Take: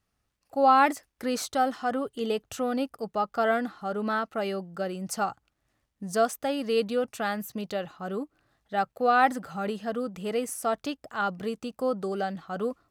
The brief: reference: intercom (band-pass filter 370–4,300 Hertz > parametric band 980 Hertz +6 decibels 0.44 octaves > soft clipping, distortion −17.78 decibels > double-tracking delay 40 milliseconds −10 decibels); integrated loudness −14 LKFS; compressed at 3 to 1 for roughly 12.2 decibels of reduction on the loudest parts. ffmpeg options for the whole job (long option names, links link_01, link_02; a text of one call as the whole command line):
ffmpeg -i in.wav -filter_complex "[0:a]acompressor=threshold=-33dB:ratio=3,highpass=370,lowpass=4300,equalizer=frequency=980:width_type=o:width=0.44:gain=6,asoftclip=threshold=-25.5dB,asplit=2[link_01][link_02];[link_02]adelay=40,volume=-10dB[link_03];[link_01][link_03]amix=inputs=2:normalize=0,volume=23.5dB" out.wav